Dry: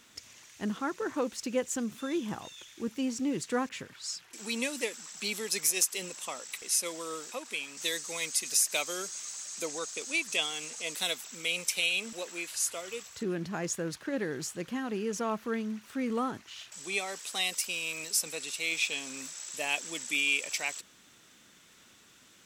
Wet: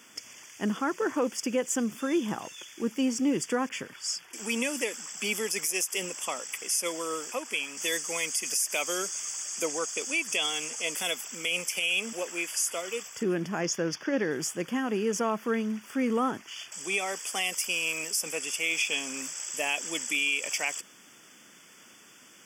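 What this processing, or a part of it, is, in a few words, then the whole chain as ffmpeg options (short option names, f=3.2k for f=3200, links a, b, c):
PA system with an anti-feedback notch: -filter_complex "[0:a]asettb=1/sr,asplit=3[a][b][c];[a]atrim=end=13.614[d];[b]atrim=start=13.61:end=14.31,asetpts=PTS-STARTPTS,afade=t=in:d=0.004:c=qsin,afade=t=out:st=0.696:d=0.004:c=qsin,highshelf=f=6.9k:t=q:w=3:g=-6.5[e];[c]atrim=start=14.306[f];[d][e]acrossfade=d=0.004:c1=hsin:c2=qsin[g];[g][f]acrossfade=d=0.004:c1=qsin:c2=hsin,highpass=170,asuperstop=centerf=4000:order=20:qfactor=3.9,alimiter=limit=-23dB:level=0:latency=1:release=63,volume=5.5dB"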